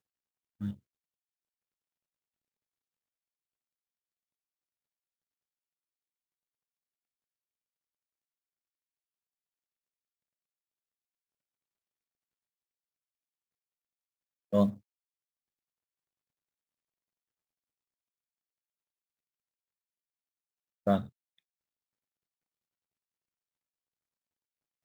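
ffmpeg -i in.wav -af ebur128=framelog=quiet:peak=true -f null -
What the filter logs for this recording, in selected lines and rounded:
Integrated loudness:
  I:         -31.8 LUFS
  Threshold: -42.7 LUFS
Loudness range:
  LRA:        11.5 LU
  Threshold: -59.1 LUFS
  LRA low:   -49.0 LUFS
  LRA high:  -37.5 LUFS
True peak:
  Peak:      -12.7 dBFS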